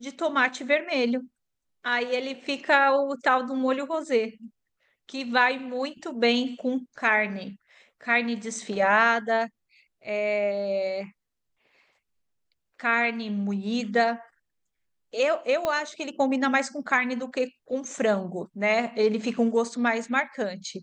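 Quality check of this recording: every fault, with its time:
15.65 s: pop -13 dBFS

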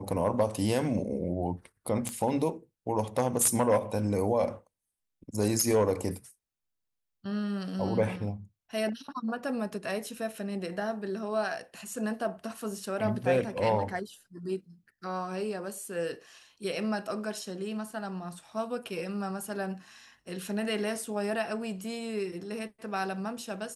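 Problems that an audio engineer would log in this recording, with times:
2.09 s: pop -20 dBFS

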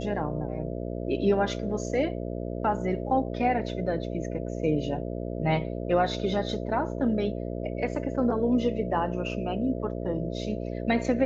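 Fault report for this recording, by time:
buzz 60 Hz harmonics 11 -33 dBFS

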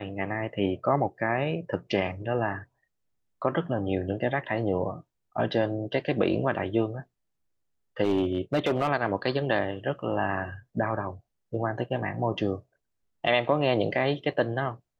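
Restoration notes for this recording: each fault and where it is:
8.03–8.89 s: clipped -19.5 dBFS

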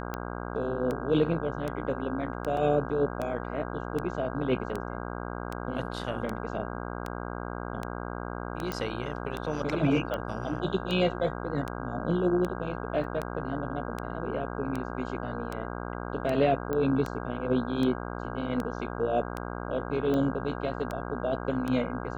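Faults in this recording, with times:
buzz 60 Hz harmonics 27 -36 dBFS
tick 78 rpm -19 dBFS
2.57 s: dropout 2.1 ms
8.72 s: pop -17 dBFS
13.04 s: dropout 2.7 ms
16.73 s: pop -19 dBFS

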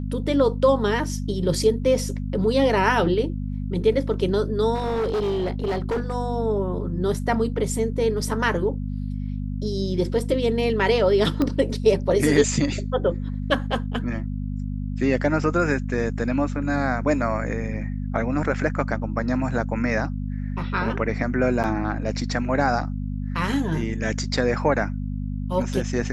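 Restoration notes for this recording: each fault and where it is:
hum 50 Hz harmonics 5 -28 dBFS
4.74–6.14 s: clipped -20.5 dBFS
11.42 s: pop -12 dBFS
21.63–21.64 s: dropout 8.4 ms

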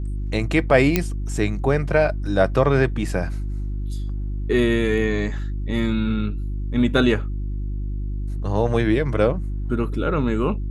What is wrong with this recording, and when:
hum 50 Hz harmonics 7 -26 dBFS
0.96 s: pop -3 dBFS

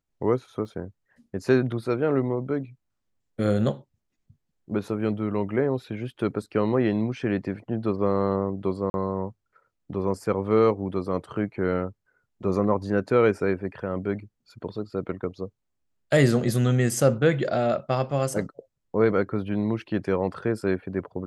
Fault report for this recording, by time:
0.65 s: dropout 2.8 ms
8.90–8.94 s: dropout 41 ms

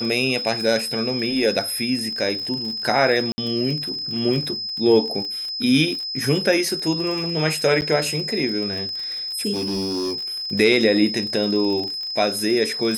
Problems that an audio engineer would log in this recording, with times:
crackle 41 per s -27 dBFS
whine 5.1 kHz -26 dBFS
3.32–3.38 s: dropout 60 ms
7.81–7.82 s: dropout 9.3 ms
9.53–10.21 s: clipped -21 dBFS

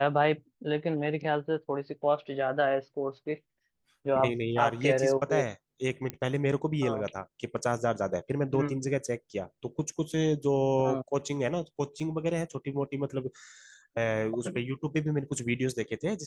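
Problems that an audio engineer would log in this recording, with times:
6.10 s: pop -19 dBFS
12.00 s: dropout 3.5 ms

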